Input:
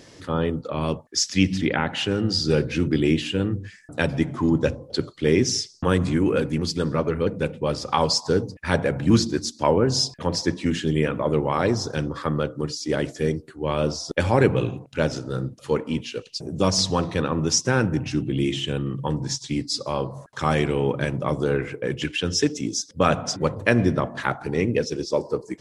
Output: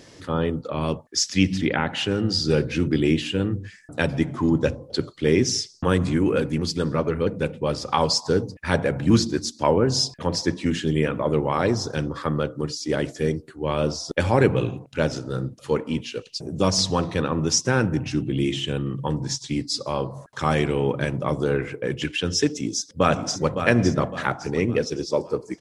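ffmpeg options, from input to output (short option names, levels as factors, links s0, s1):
-filter_complex "[0:a]asplit=2[s0][s1];[s1]afade=t=in:st=22.57:d=0.01,afade=t=out:st=23.56:d=0.01,aecho=0:1:560|1120|1680|2240|2800:0.398107|0.159243|0.0636971|0.0254789|0.0101915[s2];[s0][s2]amix=inputs=2:normalize=0"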